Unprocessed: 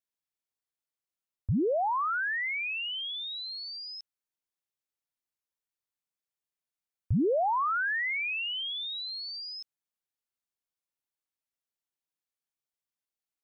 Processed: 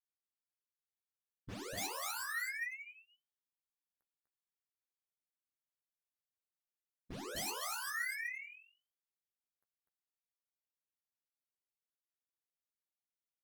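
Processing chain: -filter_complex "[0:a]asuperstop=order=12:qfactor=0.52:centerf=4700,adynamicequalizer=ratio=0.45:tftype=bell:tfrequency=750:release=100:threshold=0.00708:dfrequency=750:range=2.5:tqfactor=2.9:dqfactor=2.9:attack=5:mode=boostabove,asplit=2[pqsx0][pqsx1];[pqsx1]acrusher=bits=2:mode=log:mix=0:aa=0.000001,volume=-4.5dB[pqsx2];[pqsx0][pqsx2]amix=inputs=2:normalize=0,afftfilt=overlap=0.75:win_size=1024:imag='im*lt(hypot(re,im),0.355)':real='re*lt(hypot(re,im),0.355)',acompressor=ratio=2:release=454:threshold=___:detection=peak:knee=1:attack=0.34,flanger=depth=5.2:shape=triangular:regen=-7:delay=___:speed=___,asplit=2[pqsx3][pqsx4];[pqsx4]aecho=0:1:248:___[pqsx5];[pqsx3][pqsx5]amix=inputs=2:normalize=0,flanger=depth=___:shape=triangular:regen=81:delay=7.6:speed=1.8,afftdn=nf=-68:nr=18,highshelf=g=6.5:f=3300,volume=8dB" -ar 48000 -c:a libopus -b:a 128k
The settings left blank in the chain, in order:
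-42dB, 9.9, 0.63, 0.708, 2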